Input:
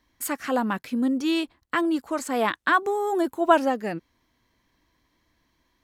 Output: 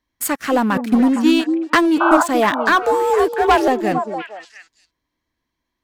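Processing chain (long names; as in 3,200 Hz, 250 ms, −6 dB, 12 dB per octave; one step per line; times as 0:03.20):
0:00.76–0:02.21: transient designer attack +9 dB, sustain −8 dB
0:02.82–0:03.68: frequency shifter +60 Hz
leveller curve on the samples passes 3
0:02.00–0:02.23: sound drawn into the spectrogram noise 600–1,600 Hz −12 dBFS
on a send: echo through a band-pass that steps 231 ms, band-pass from 310 Hz, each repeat 1.4 octaves, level −4 dB
on the sum: level −3 dB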